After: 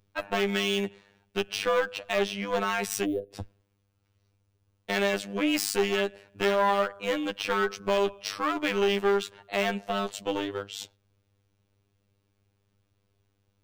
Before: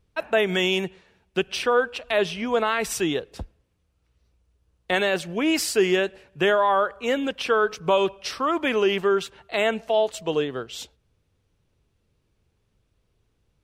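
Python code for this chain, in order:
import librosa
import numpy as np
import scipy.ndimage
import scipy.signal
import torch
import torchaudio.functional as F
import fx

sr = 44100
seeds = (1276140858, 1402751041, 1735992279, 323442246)

y = fx.clip_asym(x, sr, top_db=-26.0, bottom_db=-13.5)
y = fx.spec_box(y, sr, start_s=3.05, length_s=0.27, low_hz=690.0, high_hz=9500.0, gain_db=-24)
y = fx.robotise(y, sr, hz=99.9)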